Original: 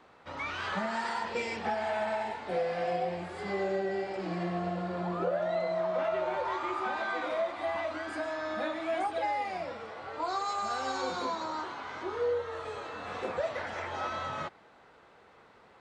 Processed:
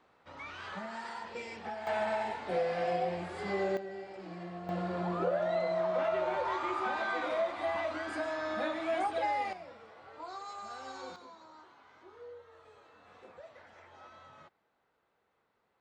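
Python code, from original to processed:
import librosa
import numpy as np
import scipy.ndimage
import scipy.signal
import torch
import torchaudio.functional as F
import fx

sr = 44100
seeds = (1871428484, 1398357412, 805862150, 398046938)

y = fx.gain(x, sr, db=fx.steps((0.0, -8.5), (1.87, -0.5), (3.77, -10.0), (4.69, -0.5), (9.53, -11.0), (11.16, -19.0)))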